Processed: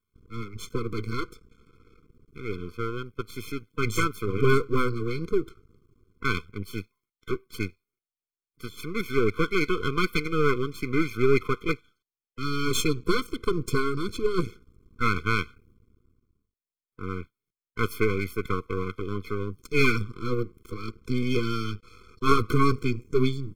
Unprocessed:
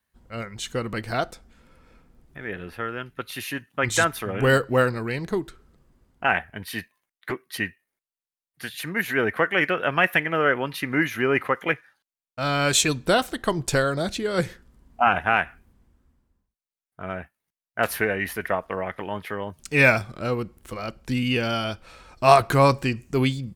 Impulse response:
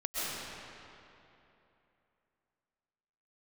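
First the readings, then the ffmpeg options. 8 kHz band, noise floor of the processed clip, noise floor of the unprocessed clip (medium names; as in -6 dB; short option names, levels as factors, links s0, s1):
-9.5 dB, under -85 dBFS, under -85 dBFS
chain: -af "equalizer=f=100:t=o:w=0.67:g=9,equalizer=f=400:t=o:w=0.67:g=8,equalizer=f=10000:t=o:w=0.67:g=-4,aeval=exprs='max(val(0),0)':c=same,afftfilt=real='re*eq(mod(floor(b*sr/1024/510),2),0)':imag='im*eq(mod(floor(b*sr/1024/510),2),0)':win_size=1024:overlap=0.75"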